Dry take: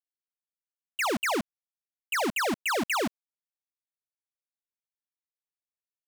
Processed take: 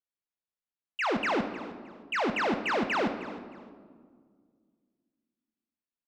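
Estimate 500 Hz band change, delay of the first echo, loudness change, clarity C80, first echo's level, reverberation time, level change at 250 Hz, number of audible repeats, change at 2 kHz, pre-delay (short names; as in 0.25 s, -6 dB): +1.0 dB, 0.31 s, -1.5 dB, 9.5 dB, -16.5 dB, 1.8 s, +1.0 dB, 2, -1.0 dB, 5 ms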